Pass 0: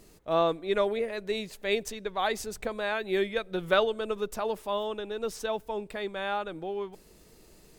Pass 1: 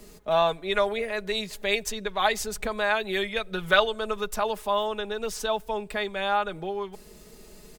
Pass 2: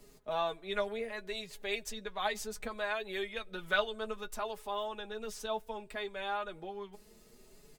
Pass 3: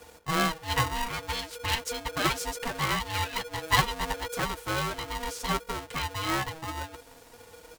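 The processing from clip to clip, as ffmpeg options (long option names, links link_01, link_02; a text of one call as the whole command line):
ffmpeg -i in.wav -filter_complex "[0:a]aecho=1:1:4.8:0.58,acrossover=split=130|680|2800[link_01][link_02][link_03][link_04];[link_02]acompressor=threshold=-39dB:ratio=6[link_05];[link_01][link_05][link_03][link_04]amix=inputs=4:normalize=0,volume=5.5dB" out.wav
ffmpeg -i in.wav -af "flanger=delay=7:depth=2.8:regen=34:speed=0.65:shape=triangular,volume=-6.5dB" out.wav
ffmpeg -i in.wav -af "aeval=exprs='val(0)*sgn(sin(2*PI*480*n/s))':channel_layout=same,volume=7dB" out.wav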